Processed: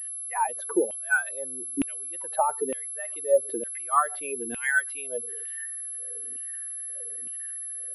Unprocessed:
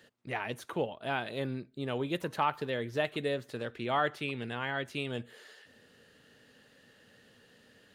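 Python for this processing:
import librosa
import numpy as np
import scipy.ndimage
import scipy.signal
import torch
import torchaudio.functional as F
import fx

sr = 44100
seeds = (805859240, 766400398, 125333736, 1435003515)

y = fx.spec_expand(x, sr, power=2.2)
y = fx.filter_lfo_highpass(y, sr, shape='saw_down', hz=1.1, low_hz=270.0, high_hz=2700.0, q=7.0)
y = fx.pwm(y, sr, carrier_hz=11000.0)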